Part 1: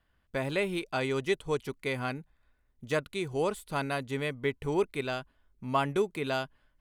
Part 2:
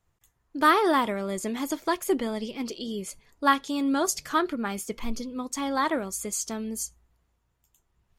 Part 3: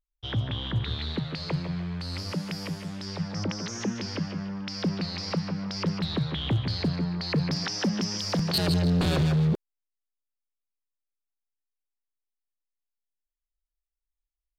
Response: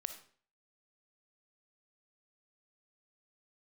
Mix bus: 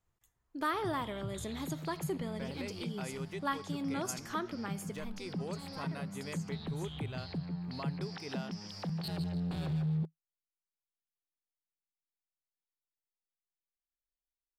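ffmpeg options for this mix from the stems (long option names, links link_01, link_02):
-filter_complex "[0:a]alimiter=limit=-24dB:level=0:latency=1:release=467,adelay=2050,volume=-7dB[link_01];[1:a]volume=-10.5dB,afade=type=out:start_time=4.78:duration=0.67:silence=0.237137,asplit=2[link_02][link_03];[link_03]volume=-6.5dB[link_04];[2:a]equalizer=frequency=160:width_type=o:width=0.33:gain=10,equalizer=frequency=800:width_type=o:width=0.33:gain=6,equalizer=frequency=6300:width_type=o:width=0.33:gain=-8,adelay=500,volume=-13.5dB[link_05];[3:a]atrim=start_sample=2205[link_06];[link_04][link_06]afir=irnorm=-1:irlink=0[link_07];[link_01][link_02][link_05][link_07]amix=inputs=4:normalize=0,acompressor=threshold=-39dB:ratio=1.5"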